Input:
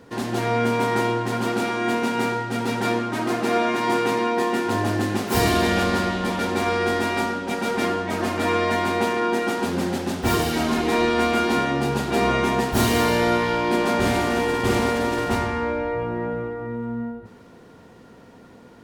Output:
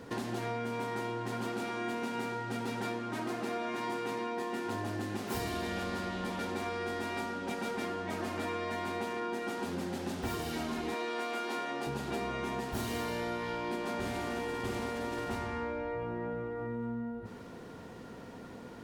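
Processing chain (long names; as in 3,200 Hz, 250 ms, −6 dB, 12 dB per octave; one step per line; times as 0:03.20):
0:10.94–0:11.87: high-pass filter 360 Hz 12 dB per octave
downward compressor 5 to 1, threshold −35 dBFS, peak gain reduction 17.5 dB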